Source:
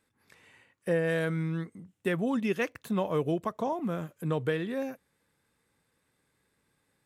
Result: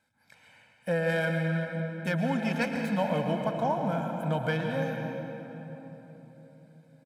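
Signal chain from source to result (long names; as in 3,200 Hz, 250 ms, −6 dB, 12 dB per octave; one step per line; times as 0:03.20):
stylus tracing distortion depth 0.06 ms
high-pass filter 160 Hz 6 dB per octave
high-shelf EQ 8,400 Hz −7.5 dB
comb filter 1.3 ms, depth 93%
convolution reverb RT60 4.0 s, pre-delay 107 ms, DRR 2.5 dB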